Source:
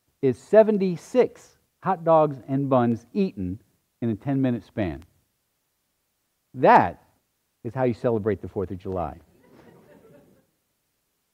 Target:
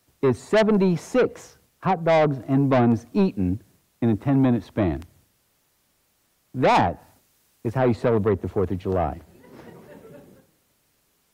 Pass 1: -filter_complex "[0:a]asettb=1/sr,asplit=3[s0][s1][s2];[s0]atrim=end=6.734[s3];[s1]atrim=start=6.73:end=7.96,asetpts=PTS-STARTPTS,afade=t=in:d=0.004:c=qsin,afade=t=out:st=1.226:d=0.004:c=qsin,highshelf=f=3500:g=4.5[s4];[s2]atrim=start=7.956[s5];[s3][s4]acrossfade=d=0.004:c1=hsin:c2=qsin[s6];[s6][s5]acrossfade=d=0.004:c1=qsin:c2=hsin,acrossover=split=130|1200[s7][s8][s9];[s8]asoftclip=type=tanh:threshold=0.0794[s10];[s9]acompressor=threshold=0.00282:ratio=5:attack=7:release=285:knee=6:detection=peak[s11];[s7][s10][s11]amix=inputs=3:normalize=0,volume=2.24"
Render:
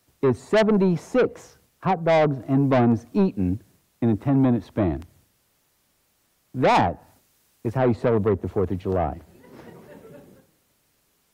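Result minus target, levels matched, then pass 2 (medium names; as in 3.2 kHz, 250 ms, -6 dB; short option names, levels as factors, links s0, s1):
compression: peak gain reduction +5.5 dB
-filter_complex "[0:a]asettb=1/sr,asplit=3[s0][s1][s2];[s0]atrim=end=6.734[s3];[s1]atrim=start=6.73:end=7.96,asetpts=PTS-STARTPTS,afade=t=in:d=0.004:c=qsin,afade=t=out:st=1.226:d=0.004:c=qsin,highshelf=f=3500:g=4.5[s4];[s2]atrim=start=7.956[s5];[s3][s4]acrossfade=d=0.004:c1=hsin:c2=qsin[s6];[s6][s5]acrossfade=d=0.004:c1=qsin:c2=hsin,acrossover=split=130|1200[s7][s8][s9];[s8]asoftclip=type=tanh:threshold=0.0794[s10];[s9]acompressor=threshold=0.00631:ratio=5:attack=7:release=285:knee=6:detection=peak[s11];[s7][s10][s11]amix=inputs=3:normalize=0,volume=2.24"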